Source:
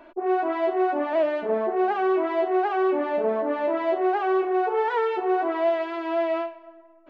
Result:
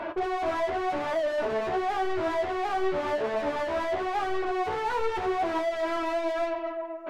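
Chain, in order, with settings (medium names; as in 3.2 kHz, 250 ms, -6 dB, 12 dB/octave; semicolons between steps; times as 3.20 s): compression 10:1, threshold -28 dBFS, peak gain reduction 10.5 dB; in parallel at -6.5 dB: hysteresis with a dead band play -27.5 dBFS; on the sum: overdrive pedal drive 32 dB, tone 1.5 kHz, clips at -18 dBFS; flange 0.91 Hz, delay 8.4 ms, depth 6.2 ms, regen +46%; on a send at -14 dB: reverberation RT60 0.35 s, pre-delay 12 ms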